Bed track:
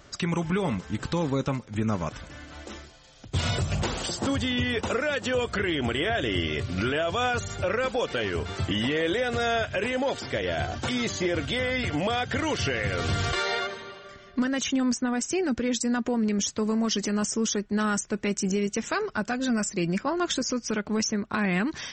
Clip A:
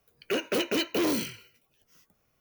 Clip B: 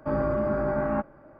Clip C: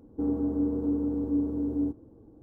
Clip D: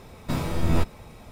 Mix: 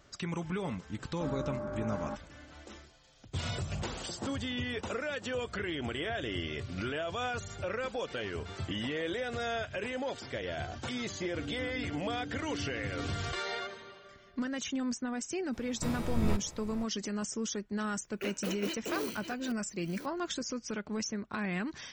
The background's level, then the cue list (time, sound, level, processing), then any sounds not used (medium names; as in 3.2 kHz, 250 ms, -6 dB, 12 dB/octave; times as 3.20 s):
bed track -9 dB
1.14 s: add B -12 dB
11.19 s: add C -15 dB
15.53 s: add D -8.5 dB + delay 479 ms -16.5 dB
17.91 s: add A -10.5 dB + chunks repeated in reverse 537 ms, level -9.5 dB